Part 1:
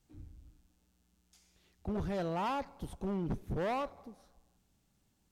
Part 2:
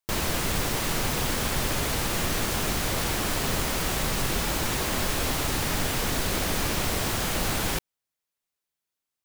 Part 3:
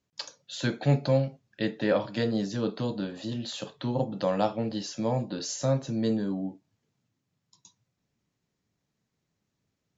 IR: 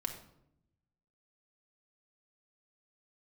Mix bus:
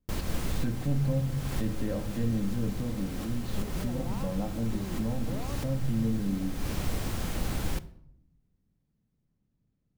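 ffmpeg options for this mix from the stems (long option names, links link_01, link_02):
-filter_complex "[0:a]adelay=1700,volume=-1dB[link_01];[1:a]volume=-14.5dB,asplit=2[link_02][link_03];[link_03]volume=-7.5dB[link_04];[2:a]aemphasis=mode=reproduction:type=bsi,volume=-11.5dB,asplit=3[link_05][link_06][link_07];[link_06]volume=-10dB[link_08];[link_07]apad=whole_len=407801[link_09];[link_02][link_09]sidechaincompress=threshold=-52dB:ratio=8:attack=16:release=190[link_10];[link_01][link_05]amix=inputs=2:normalize=0,equalizer=frequency=84:width_type=o:width=1:gain=-13,acompressor=threshold=-44dB:ratio=6,volume=0dB[link_11];[3:a]atrim=start_sample=2205[link_12];[link_04][link_08]amix=inputs=2:normalize=0[link_13];[link_13][link_12]afir=irnorm=-1:irlink=0[link_14];[link_10][link_11][link_14]amix=inputs=3:normalize=0,lowshelf=frequency=340:gain=12"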